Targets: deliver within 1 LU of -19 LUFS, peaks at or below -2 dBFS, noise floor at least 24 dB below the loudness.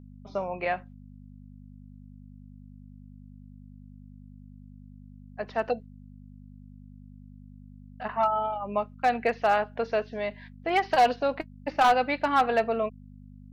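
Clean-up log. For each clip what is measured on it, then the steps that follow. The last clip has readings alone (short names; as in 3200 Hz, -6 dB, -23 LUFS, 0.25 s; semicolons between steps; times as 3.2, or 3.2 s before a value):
clipped 0.2%; flat tops at -14.5 dBFS; hum 50 Hz; harmonics up to 250 Hz; hum level -45 dBFS; loudness -27.5 LUFS; peak -14.5 dBFS; loudness target -19.0 LUFS
-> clip repair -14.5 dBFS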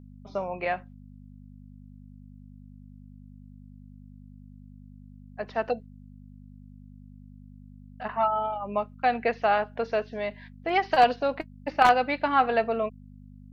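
clipped 0.0%; hum 50 Hz; harmonics up to 250 Hz; hum level -45 dBFS
-> de-hum 50 Hz, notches 5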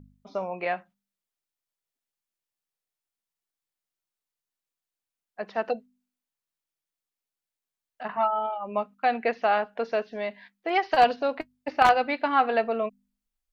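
hum none; loudness -26.5 LUFS; peak -5.5 dBFS; loudness target -19.0 LUFS
-> gain +7.5 dB; limiter -2 dBFS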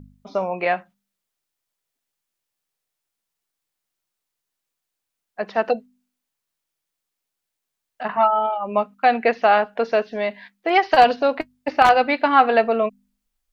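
loudness -19.5 LUFS; peak -2.0 dBFS; noise floor -82 dBFS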